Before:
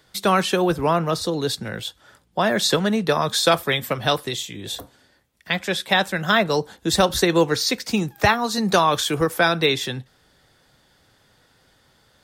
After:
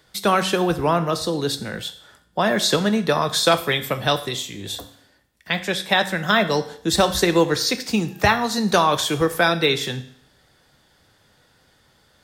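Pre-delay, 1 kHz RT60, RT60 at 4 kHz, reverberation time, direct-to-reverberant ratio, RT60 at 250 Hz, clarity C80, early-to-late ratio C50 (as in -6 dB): 8 ms, 0.60 s, 0.60 s, 0.60 s, 10.0 dB, 0.60 s, 17.0 dB, 14.5 dB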